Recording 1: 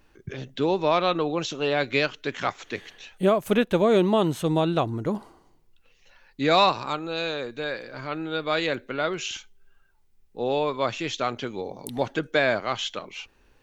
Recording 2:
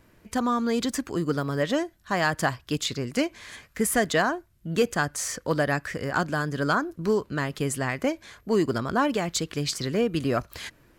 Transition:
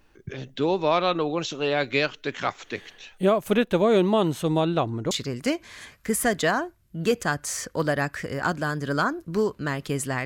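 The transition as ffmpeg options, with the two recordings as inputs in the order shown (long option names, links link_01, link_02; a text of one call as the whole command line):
ffmpeg -i cue0.wav -i cue1.wav -filter_complex "[0:a]asettb=1/sr,asplit=3[link_01][link_02][link_03];[link_01]atrim=end=4.654[link_04];[link_02]atrim=start=4.65:end=5.11,asetpts=PTS-STARTPTS,afade=type=in:duration=0.004:curve=qsin,afade=type=out:start_time=0.456:duration=0.004:curve=qsin,highshelf=frequency=7300:gain=-8[link_05];[link_03]atrim=start=5.106[link_06];[link_04][link_05]acrossfade=duration=0.004:curve1=hsin:curve2=qsin[link_07];[link_07][link_06]acrossfade=duration=0.004:curve1=qsin:curve2=hsin,apad=whole_dur=10.25,atrim=end=10.25,atrim=end=5.112[link_08];[1:a]atrim=start=2.818:end=7.96[link_09];[link_08][link_09]acrossfade=duration=0.004:curve1=hsin:curve2=hsin" out.wav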